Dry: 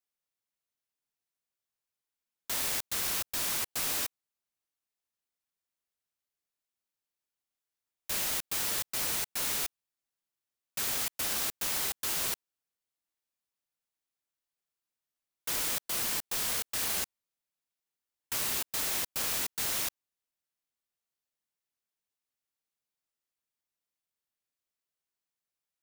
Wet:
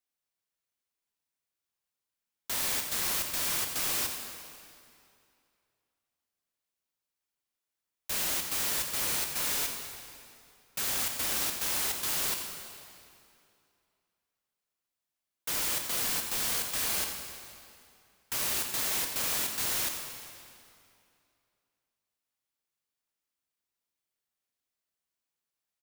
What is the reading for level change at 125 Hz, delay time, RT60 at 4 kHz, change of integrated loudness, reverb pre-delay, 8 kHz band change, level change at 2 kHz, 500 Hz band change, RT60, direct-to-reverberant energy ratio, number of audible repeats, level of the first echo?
+1.5 dB, 88 ms, 2.1 s, +1.5 dB, 19 ms, +1.5 dB, +1.5 dB, +1.5 dB, 2.5 s, 3.0 dB, 1, −11.5 dB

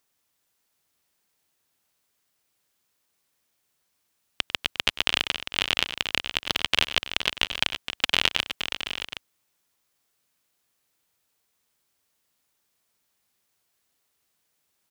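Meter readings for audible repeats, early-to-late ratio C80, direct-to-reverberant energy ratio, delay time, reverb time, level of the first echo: 4, no reverb audible, no reverb audible, 98 ms, no reverb audible, −15.5 dB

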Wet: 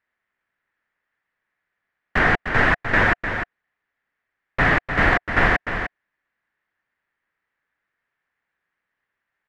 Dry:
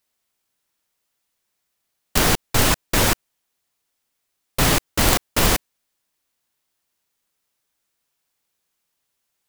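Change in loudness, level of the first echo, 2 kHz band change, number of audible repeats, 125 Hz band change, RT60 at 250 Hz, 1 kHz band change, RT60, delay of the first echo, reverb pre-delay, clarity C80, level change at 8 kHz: −0.5 dB, −8.0 dB, +8.0 dB, 1, −2.0 dB, no reverb audible, +2.5 dB, no reverb audible, 302 ms, no reverb audible, no reverb audible, below −25 dB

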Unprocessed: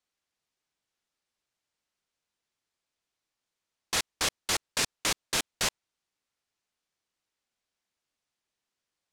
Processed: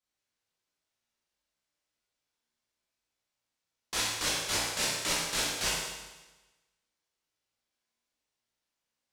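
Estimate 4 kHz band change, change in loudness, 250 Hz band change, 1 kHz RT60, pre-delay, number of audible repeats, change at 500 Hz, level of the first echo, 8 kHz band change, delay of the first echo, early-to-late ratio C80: 0.0 dB, −0.5 dB, 0.0 dB, 1.1 s, 13 ms, no echo audible, 0.0 dB, no echo audible, 0.0 dB, no echo audible, 2.0 dB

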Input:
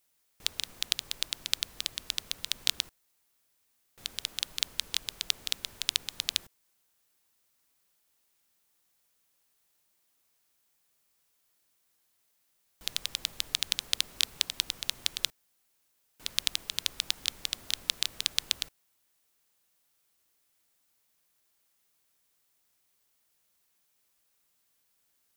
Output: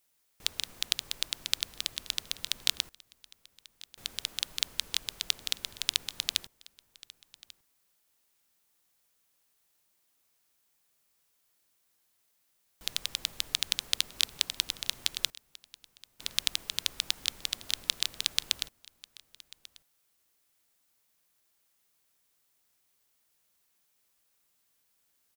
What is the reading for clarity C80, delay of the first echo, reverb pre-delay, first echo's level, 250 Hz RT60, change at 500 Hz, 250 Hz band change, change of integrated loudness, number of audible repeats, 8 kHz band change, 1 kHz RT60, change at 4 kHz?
no reverb audible, 1,141 ms, no reverb audible, −22.0 dB, no reverb audible, 0.0 dB, 0.0 dB, 0.0 dB, 1, 0.0 dB, no reverb audible, 0.0 dB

